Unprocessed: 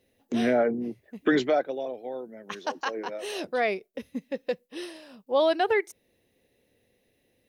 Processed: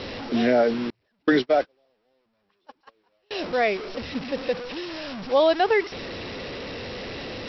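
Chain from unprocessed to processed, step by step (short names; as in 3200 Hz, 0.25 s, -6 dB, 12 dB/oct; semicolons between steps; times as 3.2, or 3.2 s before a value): delta modulation 64 kbps, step -31 dBFS; Chebyshev low-pass 5600 Hz, order 10; 0.9–3.31 gate -24 dBFS, range -38 dB; gain +4 dB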